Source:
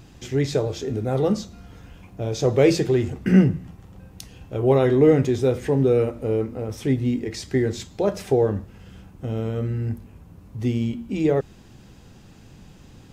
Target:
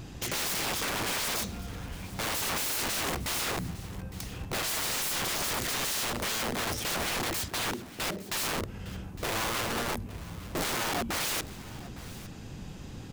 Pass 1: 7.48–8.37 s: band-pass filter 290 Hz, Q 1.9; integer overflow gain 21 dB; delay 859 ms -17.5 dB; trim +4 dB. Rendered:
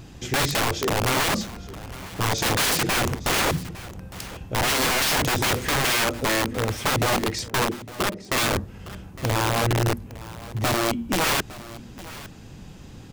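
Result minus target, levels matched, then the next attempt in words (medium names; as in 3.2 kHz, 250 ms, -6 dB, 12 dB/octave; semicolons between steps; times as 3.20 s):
integer overflow: distortion -14 dB
7.48–8.37 s: band-pass filter 290 Hz, Q 1.9; integer overflow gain 30.5 dB; delay 859 ms -17.5 dB; trim +4 dB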